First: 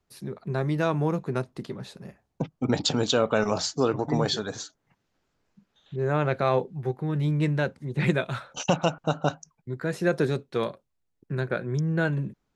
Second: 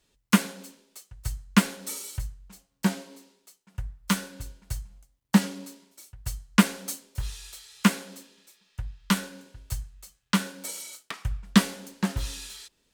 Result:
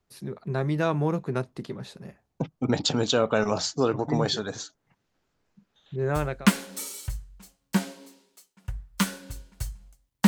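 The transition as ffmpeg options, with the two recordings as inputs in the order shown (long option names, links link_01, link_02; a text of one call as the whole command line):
ffmpeg -i cue0.wav -i cue1.wav -filter_complex "[0:a]apad=whole_dur=10.27,atrim=end=10.27,atrim=end=6.49,asetpts=PTS-STARTPTS[link_01];[1:a]atrim=start=1.05:end=5.37,asetpts=PTS-STARTPTS[link_02];[link_01][link_02]acrossfade=duration=0.54:curve1=qsin:curve2=qsin" out.wav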